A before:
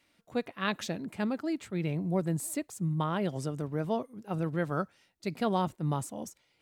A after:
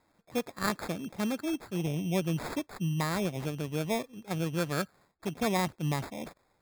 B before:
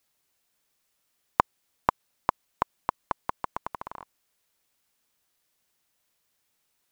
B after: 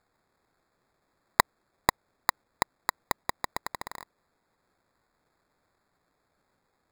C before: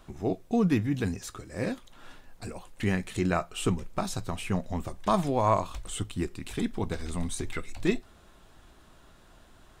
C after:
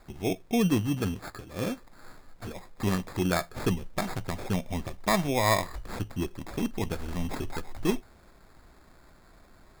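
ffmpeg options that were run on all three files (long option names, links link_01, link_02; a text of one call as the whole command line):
ffmpeg -i in.wav -af "acrusher=samples=15:mix=1:aa=0.000001" out.wav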